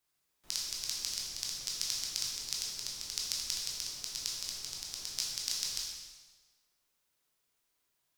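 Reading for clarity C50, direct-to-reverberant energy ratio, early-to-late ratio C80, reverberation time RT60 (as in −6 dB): 0.5 dB, −4.0 dB, 3.0 dB, 1.3 s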